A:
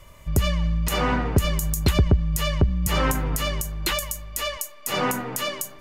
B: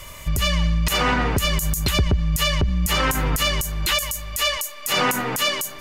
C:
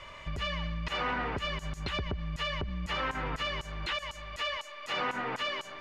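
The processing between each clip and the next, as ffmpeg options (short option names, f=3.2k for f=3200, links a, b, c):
-filter_complex "[0:a]tiltshelf=f=1.4k:g=-5,asplit=2[a][b];[b]acompressor=threshold=-31dB:ratio=6,volume=2.5dB[c];[a][c]amix=inputs=2:normalize=0,alimiter=limit=-14dB:level=0:latency=1:release=72,volume=4dB"
-filter_complex "[0:a]asplit=2[a][b];[b]highpass=f=720:p=1,volume=10dB,asoftclip=type=tanh:threshold=-9.5dB[c];[a][c]amix=inputs=2:normalize=0,lowpass=f=2.2k:p=1,volume=-6dB,acompressor=threshold=-25dB:ratio=2,lowpass=4.1k,volume=-7.5dB"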